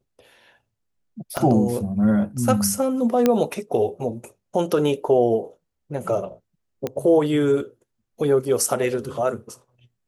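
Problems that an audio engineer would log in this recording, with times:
0:01.37: click −9 dBFS
0:03.26: click −5 dBFS
0:06.87: click −13 dBFS

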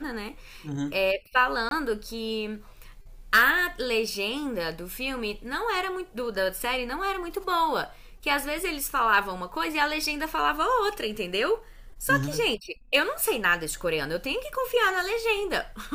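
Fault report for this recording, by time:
0:01.69–0:01.71: drop-out 22 ms

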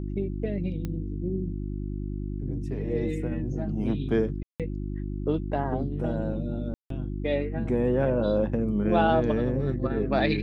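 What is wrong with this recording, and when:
mains hum 50 Hz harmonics 7 −32 dBFS
0:00.85: click −20 dBFS
0:04.43–0:04.60: drop-out 167 ms
0:06.74–0:06.90: drop-out 163 ms

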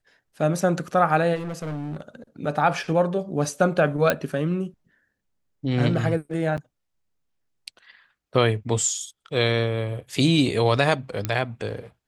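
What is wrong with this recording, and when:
0:01.35–0:02.01: clipping −27.5 dBFS
0:04.10: click −5 dBFS
0:06.57–0:06.58: drop-out 8.3 ms
0:11.25: click −10 dBFS

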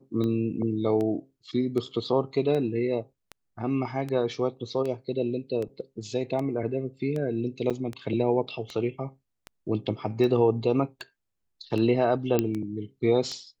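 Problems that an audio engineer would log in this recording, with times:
scratch tick 78 rpm −21 dBFS
0:07.70–0:07.71: drop-out 6.2 ms
0:12.39: click −10 dBFS

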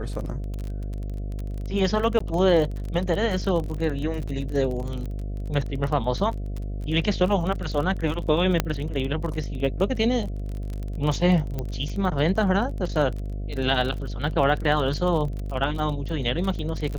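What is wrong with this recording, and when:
mains buzz 50 Hz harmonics 14 −30 dBFS
surface crackle 28 per second −29 dBFS
0:02.19–0:02.20: drop-out 14 ms
0:04.27–0:04.28: drop-out 5.8 ms
0:08.60: click −6 dBFS
0:11.59: click −16 dBFS

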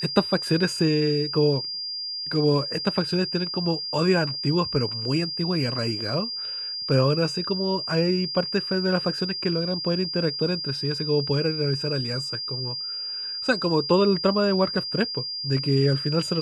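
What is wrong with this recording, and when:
whistle 4,800 Hz −29 dBFS

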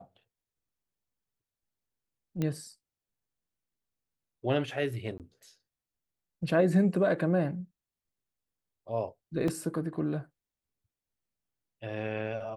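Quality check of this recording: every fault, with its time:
0:02.42: click −19 dBFS
0:05.18–0:05.20: drop-out 18 ms
0:09.48: drop-out 3.1 ms

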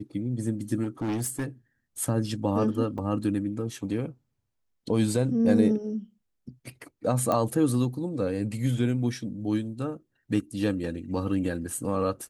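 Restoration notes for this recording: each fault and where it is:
0:00.83–0:01.46: clipping −25.5 dBFS
0:02.98: drop-out 4.9 ms
0:07.32: click −14 dBFS

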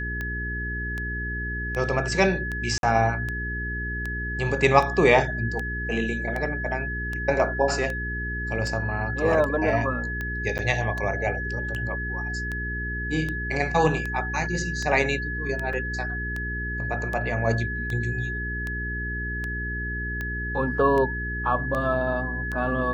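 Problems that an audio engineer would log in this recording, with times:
mains hum 60 Hz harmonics 7 −32 dBFS
scratch tick 78 rpm −18 dBFS
whistle 1,700 Hz −30 dBFS
0:02.78–0:02.83: drop-out 52 ms
0:10.58–0:10.59: drop-out 9.3 ms
0:15.73: drop-out 4 ms

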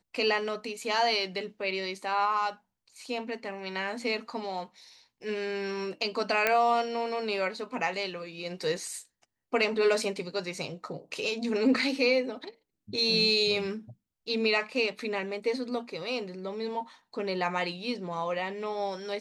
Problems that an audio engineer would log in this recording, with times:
0:06.47: click −10 dBFS

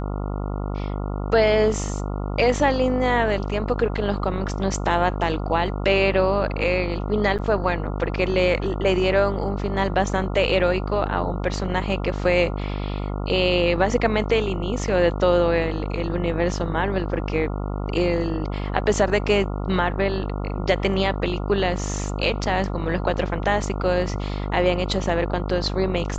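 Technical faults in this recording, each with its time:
mains buzz 50 Hz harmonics 28 −27 dBFS
0:07.38–0:07.39: drop-out 7.6 ms

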